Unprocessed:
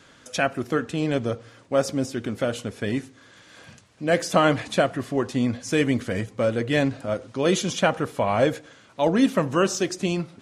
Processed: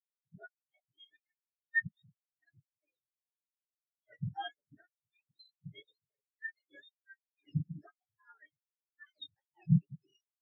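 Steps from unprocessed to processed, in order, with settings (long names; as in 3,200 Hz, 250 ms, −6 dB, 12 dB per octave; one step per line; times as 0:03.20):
frequency axis turned over on the octave scale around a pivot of 1,000 Hz
every bin expanded away from the loudest bin 4 to 1
level −7 dB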